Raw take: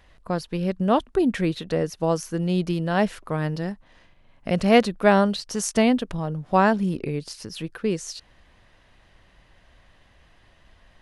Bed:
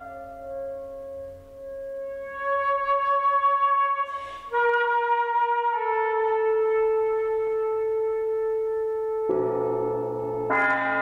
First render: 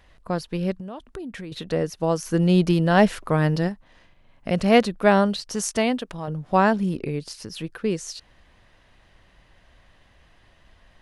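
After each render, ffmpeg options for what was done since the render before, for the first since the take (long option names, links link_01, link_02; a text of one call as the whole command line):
ffmpeg -i in.wav -filter_complex "[0:a]asettb=1/sr,asplit=3[link_01][link_02][link_03];[link_01]atrim=end=0.724[link_04];[link_02]atrim=start=0.72:end=1.52,asetpts=PTS-STARTPTS,afade=type=in:duration=0.004:curve=qsin,afade=type=out:start_time=0.796:duration=0.004:curve=qsin,acompressor=threshold=-33dB:ratio=6:attack=3.2:release=140:knee=1:detection=peak[link_05];[link_03]atrim=start=1.516[link_06];[link_04][link_05]acrossfade=duration=0.004:curve1=hsin:curve2=qsin[link_07];[link_07][link_06]acrossfade=duration=0.004:curve1=qsin:curve2=hsin,asplit=3[link_08][link_09][link_10];[link_08]afade=type=out:start_time=2.25:duration=0.02[link_11];[link_09]acontrast=43,afade=type=in:start_time=2.25:duration=0.02,afade=type=out:start_time=3.67:duration=0.02[link_12];[link_10]afade=type=in:start_time=3.67:duration=0.02[link_13];[link_11][link_12][link_13]amix=inputs=3:normalize=0,asettb=1/sr,asplit=3[link_14][link_15][link_16];[link_14]atrim=end=5.774[link_17];[link_15]atrim=start=5.77:end=6.28,asetpts=PTS-STARTPTS,afade=type=in:duration=0.004:curve=qsin,afade=type=out:start_time=0.506:duration=0.004:curve=qsin,lowshelf=frequency=250:gain=-9.5[link_18];[link_16]atrim=start=6.276[link_19];[link_17][link_18]acrossfade=duration=0.004:curve1=hsin:curve2=qsin[link_20];[link_20][link_19]acrossfade=duration=0.004:curve1=qsin:curve2=hsin" out.wav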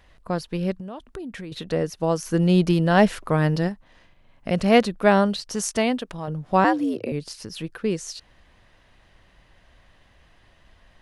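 ffmpeg -i in.wav -filter_complex "[0:a]asettb=1/sr,asplit=3[link_01][link_02][link_03];[link_01]atrim=end=6.644[link_04];[link_02]atrim=start=6.64:end=7.12,asetpts=PTS-STARTPTS,afade=type=in:duration=0.004:curve=qsin,afade=type=out:start_time=0.476:duration=0.004:curve=qsin,afreqshift=92[link_05];[link_03]atrim=start=7.116[link_06];[link_04][link_05]acrossfade=duration=0.004:curve1=hsin:curve2=qsin[link_07];[link_07][link_06]acrossfade=duration=0.004:curve1=qsin:curve2=hsin" out.wav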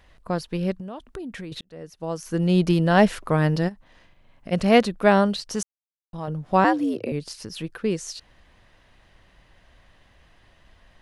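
ffmpeg -i in.wav -filter_complex "[0:a]asplit=3[link_01][link_02][link_03];[link_01]afade=type=out:start_time=3.68:duration=0.02[link_04];[link_02]acompressor=threshold=-34dB:ratio=3:attack=3.2:release=140:knee=1:detection=peak,afade=type=in:start_time=3.68:duration=0.02,afade=type=out:start_time=4.51:duration=0.02[link_05];[link_03]afade=type=in:start_time=4.51:duration=0.02[link_06];[link_04][link_05][link_06]amix=inputs=3:normalize=0,asplit=4[link_07][link_08][link_09][link_10];[link_07]atrim=end=1.61,asetpts=PTS-STARTPTS,afade=type=out:start_time=1.606:duration=0.004:curve=hsin[link_11];[link_08]atrim=start=1.61:end=5.63,asetpts=PTS-STARTPTS,afade=type=in:duration=1.11,afade=type=out:start_time=4.016:duration=0.004:curve=hsin[link_12];[link_09]atrim=start=5.63:end=6.13,asetpts=PTS-STARTPTS,volume=0[link_13];[link_10]atrim=start=6.13,asetpts=PTS-STARTPTS,afade=type=in:duration=0.004:curve=hsin[link_14];[link_11][link_12][link_13][link_14]concat=n=4:v=0:a=1" out.wav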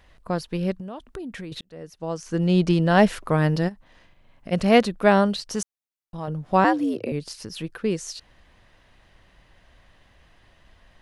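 ffmpeg -i in.wav -filter_complex "[0:a]asettb=1/sr,asplit=3[link_01][link_02][link_03];[link_01]atrim=end=1.984[link_04];[link_02]atrim=start=1.98:end=2.89,asetpts=PTS-STARTPTS,afade=type=in:duration=0.004:curve=qsin,afade=type=out:start_time=0.906:duration=0.004:curve=qsin,lowpass=frequency=8700:width=0.5412,lowpass=frequency=8700:width=1.3066[link_05];[link_03]atrim=start=2.886[link_06];[link_04][link_05]acrossfade=duration=0.004:curve1=hsin:curve2=qsin[link_07];[link_07][link_06]acrossfade=duration=0.004:curve1=qsin:curve2=hsin" out.wav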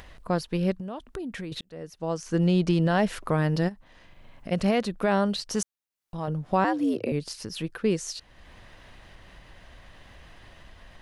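ffmpeg -i in.wav -af "alimiter=limit=-13dB:level=0:latency=1:release=198,acompressor=mode=upward:threshold=-40dB:ratio=2.5" out.wav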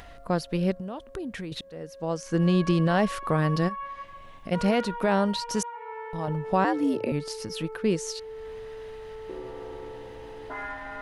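ffmpeg -i in.wav -i bed.wav -filter_complex "[1:a]volume=-14dB[link_01];[0:a][link_01]amix=inputs=2:normalize=0" out.wav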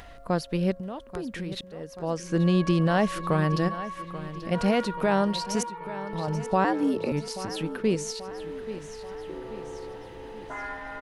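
ffmpeg -i in.wav -af "aecho=1:1:834|1668|2502|3336|4170:0.2|0.104|0.054|0.0281|0.0146" out.wav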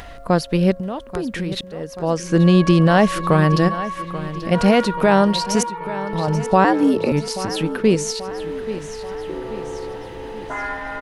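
ffmpeg -i in.wav -af "volume=9dB" out.wav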